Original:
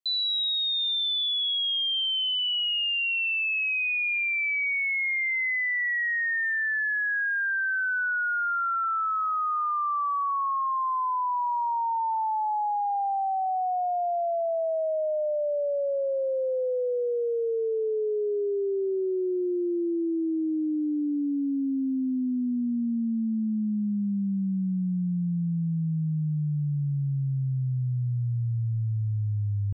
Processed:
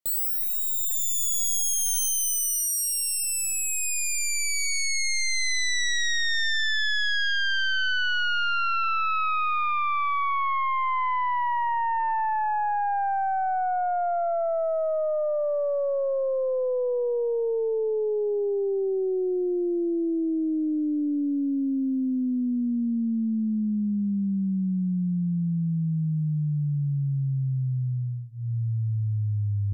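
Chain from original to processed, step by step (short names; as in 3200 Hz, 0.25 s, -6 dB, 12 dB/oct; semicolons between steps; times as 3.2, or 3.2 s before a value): tracing distortion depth 0.29 ms; notches 60/120 Hz; gain +1.5 dB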